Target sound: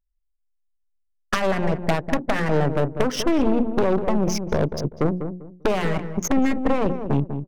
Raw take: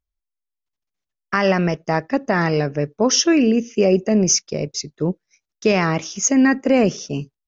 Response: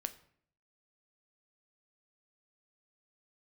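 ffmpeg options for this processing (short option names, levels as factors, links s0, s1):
-filter_complex "[0:a]aemphasis=mode=reproduction:type=75fm,bandreject=f=60:t=h:w=6,bandreject=f=120:t=h:w=6,bandreject=f=180:t=h:w=6,bandreject=f=240:t=h:w=6,bandreject=f=300:t=h:w=6,bandreject=f=360:t=h:w=6,anlmdn=25.1,highshelf=f=4600:g=-10.5,acompressor=threshold=0.0708:ratio=16,aeval=exprs='0.2*(cos(1*acos(clip(val(0)/0.2,-1,1)))-cos(1*PI/2))+0.0708*(cos(4*acos(clip(val(0)/0.2,-1,1)))-cos(4*PI/2))+0.0708*(cos(5*acos(clip(val(0)/0.2,-1,1)))-cos(5*PI/2))+0.02*(cos(8*acos(clip(val(0)/0.2,-1,1)))-cos(8*PI/2))':c=same,adynamicsmooth=sensitivity=7.5:basefreq=2000,asplit=2[s0][s1];[s1]adelay=197,lowpass=f=910:p=1,volume=0.422,asplit=2[s2][s3];[s3]adelay=197,lowpass=f=910:p=1,volume=0.27,asplit=2[s4][s5];[s5]adelay=197,lowpass=f=910:p=1,volume=0.27[s6];[s2][s4][s6]amix=inputs=3:normalize=0[s7];[s0][s7]amix=inputs=2:normalize=0"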